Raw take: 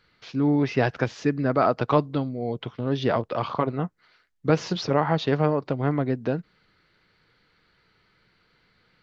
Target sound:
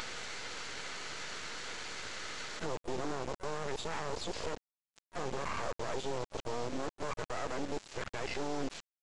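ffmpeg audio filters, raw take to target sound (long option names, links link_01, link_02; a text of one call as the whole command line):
ffmpeg -i in.wav -filter_complex "[0:a]areverse,highpass=frequency=390:width=0.5412,highpass=frequency=390:width=1.3066,afwtdn=0.0251,aresample=11025,aresample=44100,acompressor=mode=upward:threshold=-26dB:ratio=2.5,alimiter=level_in=13dB:limit=-24dB:level=0:latency=1:release=14,volume=-13dB,aresample=16000,acrusher=bits=6:dc=4:mix=0:aa=0.000001,aresample=44100,asplit=2[link_01][link_02];[link_02]asetrate=58866,aresample=44100,atempo=0.749154,volume=-12dB[link_03];[link_01][link_03]amix=inputs=2:normalize=0,volume=11dB" out.wav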